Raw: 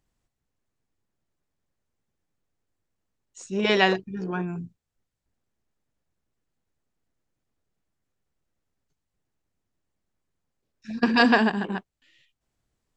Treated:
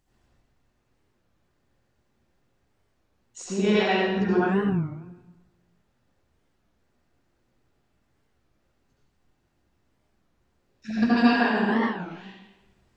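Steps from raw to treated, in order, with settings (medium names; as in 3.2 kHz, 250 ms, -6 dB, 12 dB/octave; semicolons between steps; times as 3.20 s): compression 12:1, threshold -31 dBFS, peak gain reduction 18 dB; reverberation RT60 1.1 s, pre-delay 67 ms, DRR -10 dB; warped record 33 1/3 rpm, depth 250 cents; trim +3 dB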